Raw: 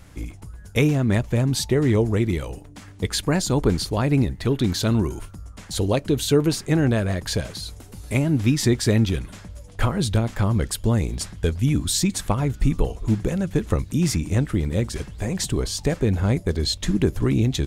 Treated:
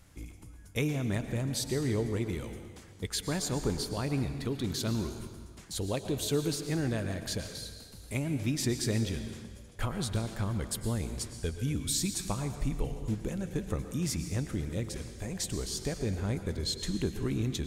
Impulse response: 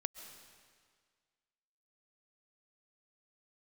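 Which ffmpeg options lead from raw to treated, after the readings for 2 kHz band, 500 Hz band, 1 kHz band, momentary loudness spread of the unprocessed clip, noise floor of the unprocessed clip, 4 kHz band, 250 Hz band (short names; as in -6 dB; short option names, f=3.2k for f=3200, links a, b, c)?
-10.0 dB, -11.0 dB, -11.0 dB, 11 LU, -43 dBFS, -8.5 dB, -11.5 dB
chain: -filter_complex "[0:a]highshelf=f=4.2k:g=6[a];[1:a]atrim=start_sample=2205,asetrate=52920,aresample=44100[b];[a][b]afir=irnorm=-1:irlink=0,volume=-8.5dB"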